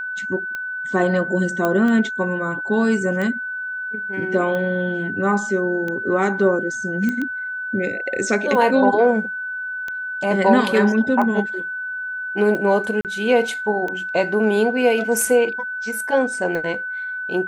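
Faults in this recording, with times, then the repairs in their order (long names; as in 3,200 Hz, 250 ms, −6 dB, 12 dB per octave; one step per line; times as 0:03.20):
scratch tick 45 rpm −15 dBFS
whistle 1,500 Hz −25 dBFS
0:01.65: click −8 dBFS
0:07.09: click −12 dBFS
0:13.01–0:13.05: drop-out 38 ms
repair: click removal
notch filter 1,500 Hz, Q 30
repair the gap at 0:13.01, 38 ms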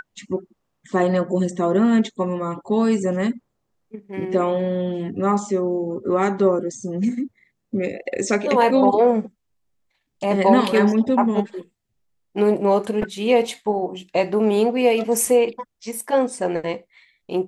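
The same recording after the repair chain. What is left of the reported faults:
none of them is left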